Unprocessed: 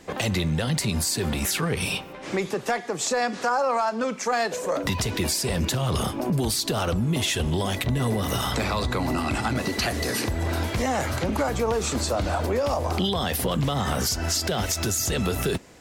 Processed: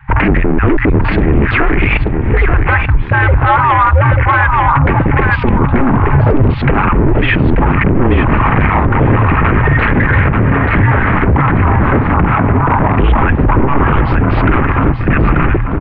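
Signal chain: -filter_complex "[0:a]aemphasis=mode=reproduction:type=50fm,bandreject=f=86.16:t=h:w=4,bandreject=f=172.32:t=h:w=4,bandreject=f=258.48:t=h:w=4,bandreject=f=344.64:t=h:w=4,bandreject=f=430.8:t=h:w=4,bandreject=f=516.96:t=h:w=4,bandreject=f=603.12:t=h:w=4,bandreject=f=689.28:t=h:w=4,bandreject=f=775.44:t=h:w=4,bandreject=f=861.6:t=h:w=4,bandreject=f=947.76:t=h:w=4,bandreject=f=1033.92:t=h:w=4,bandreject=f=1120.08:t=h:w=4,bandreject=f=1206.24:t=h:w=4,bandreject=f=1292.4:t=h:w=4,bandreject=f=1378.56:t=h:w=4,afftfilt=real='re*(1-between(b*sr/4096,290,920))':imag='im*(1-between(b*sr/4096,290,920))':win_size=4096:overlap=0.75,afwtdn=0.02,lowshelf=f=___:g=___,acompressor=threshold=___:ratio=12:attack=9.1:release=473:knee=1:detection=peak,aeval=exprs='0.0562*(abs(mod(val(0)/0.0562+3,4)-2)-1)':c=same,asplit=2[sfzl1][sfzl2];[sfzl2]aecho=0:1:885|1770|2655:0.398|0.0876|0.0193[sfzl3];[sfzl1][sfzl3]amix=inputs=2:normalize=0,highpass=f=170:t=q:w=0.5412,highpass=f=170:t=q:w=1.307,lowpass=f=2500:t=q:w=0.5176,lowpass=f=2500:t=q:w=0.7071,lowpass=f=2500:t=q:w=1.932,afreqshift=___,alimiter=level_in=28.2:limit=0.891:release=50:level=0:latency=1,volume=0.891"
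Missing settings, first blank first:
280, 8.5, 0.0794, -140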